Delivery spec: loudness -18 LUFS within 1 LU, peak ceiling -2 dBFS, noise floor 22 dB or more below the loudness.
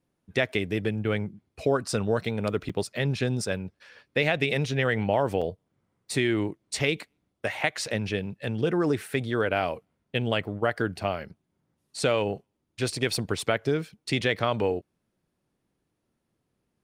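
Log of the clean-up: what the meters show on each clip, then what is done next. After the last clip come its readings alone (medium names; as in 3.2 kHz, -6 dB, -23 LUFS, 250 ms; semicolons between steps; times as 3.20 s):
dropouts 2; longest dropout 5.5 ms; loudness -28.0 LUFS; peak level -8.5 dBFS; loudness target -18.0 LUFS
-> interpolate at 2.69/5.41 s, 5.5 ms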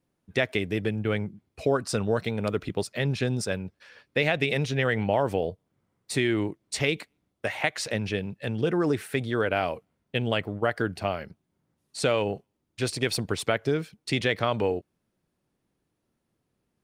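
dropouts 0; loudness -28.0 LUFS; peak level -8.5 dBFS; loudness target -18.0 LUFS
-> trim +10 dB; peak limiter -2 dBFS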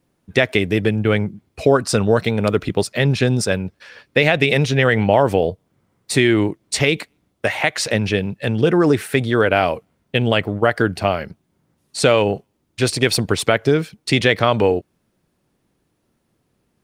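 loudness -18.0 LUFS; peak level -2.0 dBFS; noise floor -69 dBFS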